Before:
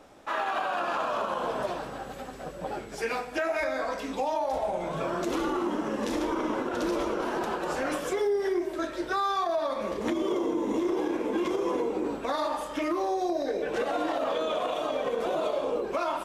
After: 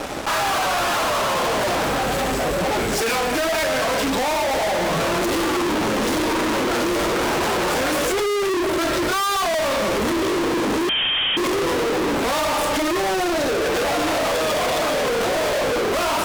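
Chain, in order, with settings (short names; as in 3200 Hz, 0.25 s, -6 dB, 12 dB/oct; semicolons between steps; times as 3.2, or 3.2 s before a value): wow and flutter 24 cents; fuzz box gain 52 dB, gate -56 dBFS; 10.89–11.37 inverted band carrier 3500 Hz; gain -7 dB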